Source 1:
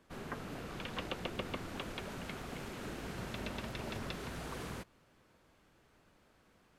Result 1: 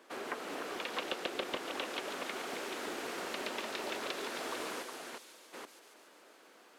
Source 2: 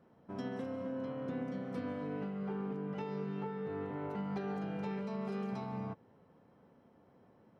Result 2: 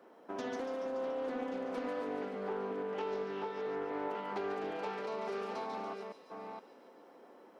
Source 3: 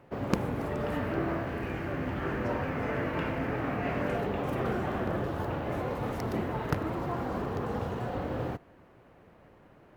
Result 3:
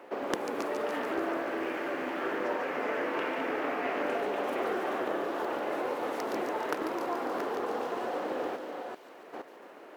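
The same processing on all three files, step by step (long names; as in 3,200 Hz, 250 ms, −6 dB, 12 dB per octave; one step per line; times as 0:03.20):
delay that plays each chunk backwards 471 ms, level −8 dB
high-pass filter 310 Hz 24 dB per octave
downward compressor 1.5 to 1, threshold −52 dBFS
delay with a high-pass on its return 143 ms, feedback 69%, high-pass 4,000 Hz, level −4.5 dB
highs frequency-modulated by the lows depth 0.24 ms
level +9 dB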